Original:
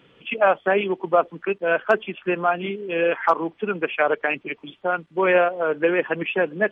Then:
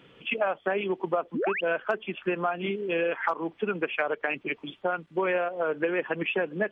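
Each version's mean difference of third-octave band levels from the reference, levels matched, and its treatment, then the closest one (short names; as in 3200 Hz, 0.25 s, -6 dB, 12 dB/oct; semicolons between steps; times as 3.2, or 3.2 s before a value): 2.0 dB: painted sound rise, 1.34–1.61, 200–3100 Hz -26 dBFS; compressor 6:1, threshold -24 dBFS, peak gain reduction 11.5 dB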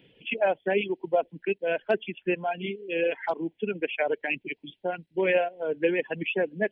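3.5 dB: reverb removal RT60 1.4 s; fixed phaser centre 2900 Hz, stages 4; gain -2 dB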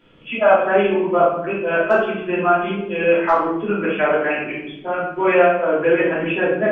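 6.0 dB: low shelf 150 Hz +8.5 dB; shoebox room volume 210 m³, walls mixed, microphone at 2.9 m; gain -7 dB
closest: first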